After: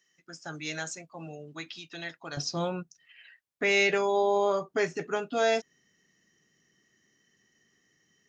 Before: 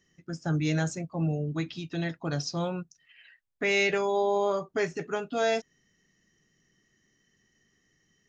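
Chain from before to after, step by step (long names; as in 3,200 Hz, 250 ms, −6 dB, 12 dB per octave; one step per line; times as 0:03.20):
high-pass filter 1,400 Hz 6 dB per octave, from 0:02.37 200 Hz
level +1.5 dB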